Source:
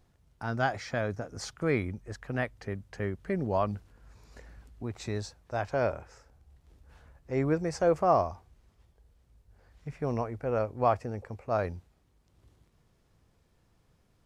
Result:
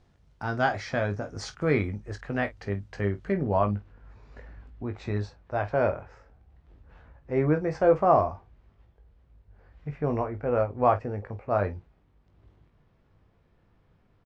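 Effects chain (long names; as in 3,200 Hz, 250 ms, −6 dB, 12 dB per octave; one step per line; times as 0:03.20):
low-pass filter 5,700 Hz 12 dB per octave, from 0:03.32 2,600 Hz
ambience of single reflections 20 ms −7.5 dB, 49 ms −15.5 dB
level +3 dB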